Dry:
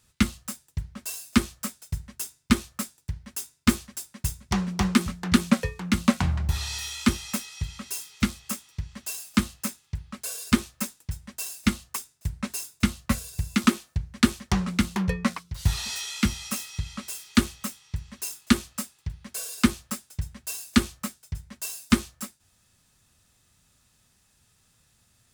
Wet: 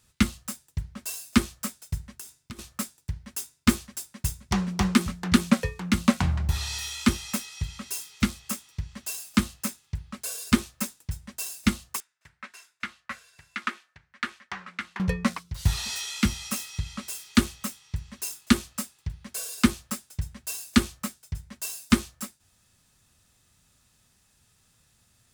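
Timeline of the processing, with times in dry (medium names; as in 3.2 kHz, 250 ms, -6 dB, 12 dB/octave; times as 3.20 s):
2.03–2.59 s: compression 12:1, threshold -36 dBFS
12.00–15.00 s: band-pass filter 1.7 kHz, Q 1.7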